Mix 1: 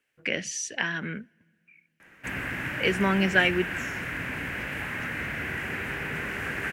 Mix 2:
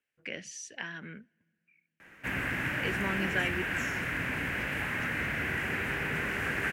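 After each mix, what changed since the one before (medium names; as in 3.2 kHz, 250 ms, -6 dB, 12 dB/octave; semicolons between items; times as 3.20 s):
speech -10.5 dB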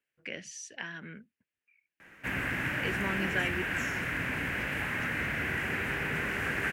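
reverb: off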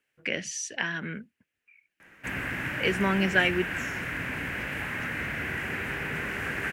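speech +9.5 dB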